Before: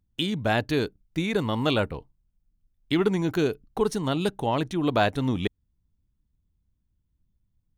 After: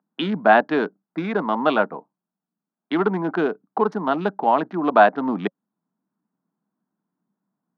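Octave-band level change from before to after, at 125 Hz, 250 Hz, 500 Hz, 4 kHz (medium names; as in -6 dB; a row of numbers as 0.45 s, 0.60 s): -5.5 dB, +2.5 dB, +5.5 dB, -4.0 dB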